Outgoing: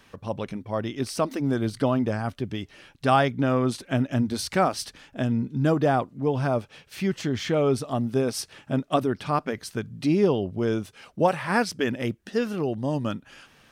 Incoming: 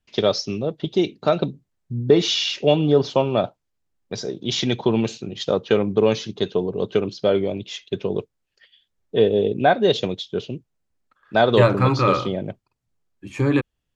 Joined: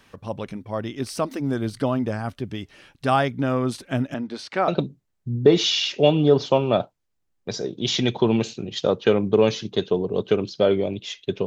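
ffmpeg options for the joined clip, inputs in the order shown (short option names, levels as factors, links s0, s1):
-filter_complex "[0:a]asettb=1/sr,asplit=3[s0][s1][s2];[s0]atrim=end=4.144[s3];[s1]atrim=start=4.14:end=4.68,asetpts=PTS-STARTPTS,afade=t=in:d=0.004:c=qsin,afade=t=out:st=0.536:d=0.004:c=qsin,highpass=290,lowpass=3800[s4];[s2]atrim=start=4.676[s5];[s3][s4]acrossfade=d=0.004:c1=hsin:c2=qsin[s6];[s6][s5]acrossfade=d=0.004:c1=qsin:c2=hsin,apad=whole_dur=11.46,atrim=end=11.46,atrim=end=4.682[s7];[1:a]atrim=start=1.318:end=8.1[s8];[s7][s8]acrossfade=d=0.004:c1=hsin:c2=hsin"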